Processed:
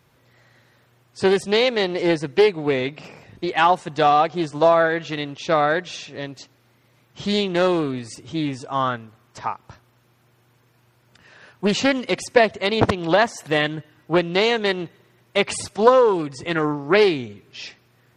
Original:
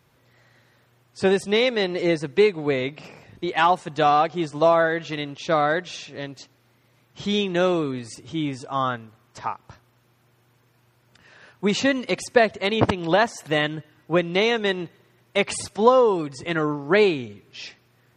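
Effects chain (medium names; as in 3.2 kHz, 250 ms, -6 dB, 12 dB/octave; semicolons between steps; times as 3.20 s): loudspeaker Doppler distortion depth 0.43 ms; trim +2 dB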